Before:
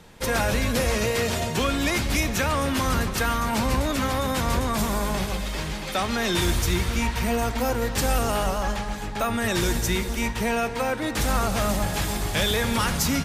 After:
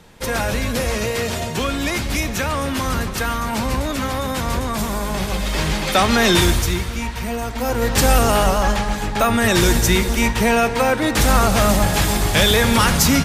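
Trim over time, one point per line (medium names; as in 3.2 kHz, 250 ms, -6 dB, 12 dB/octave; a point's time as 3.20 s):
5.07 s +2 dB
5.68 s +10 dB
6.31 s +10 dB
6.91 s -0.5 dB
7.50 s -0.5 dB
7.94 s +8.5 dB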